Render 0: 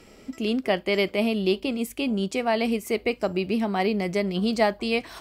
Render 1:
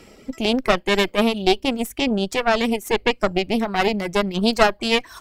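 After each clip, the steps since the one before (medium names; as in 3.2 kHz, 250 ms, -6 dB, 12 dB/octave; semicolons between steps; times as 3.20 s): reverb removal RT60 1.3 s; Chebyshev shaper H 4 -8 dB, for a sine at -9 dBFS; trim +4.5 dB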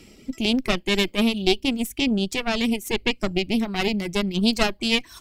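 high-order bell 900 Hz -9 dB 2.3 oct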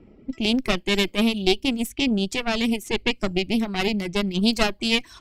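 level-controlled noise filter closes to 910 Hz, open at -21 dBFS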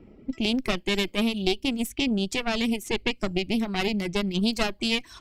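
compression 2:1, threshold -23 dBFS, peak gain reduction 6 dB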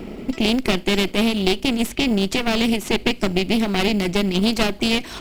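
spectral levelling over time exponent 0.6; in parallel at -12 dB: sample-and-hold 18×; on the sum: trim +2 dB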